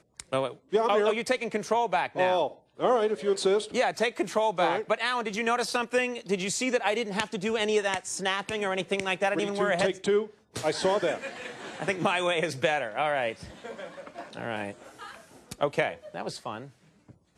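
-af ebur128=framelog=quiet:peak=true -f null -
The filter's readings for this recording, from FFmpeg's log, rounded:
Integrated loudness:
  I:         -27.9 LUFS
  Threshold: -38.5 LUFS
Loudness range:
  LRA:         6.8 LU
  Threshold: -48.3 LUFS
  LRA low:   -33.4 LUFS
  LRA high:  -26.6 LUFS
True peak:
  Peak:      -11.0 dBFS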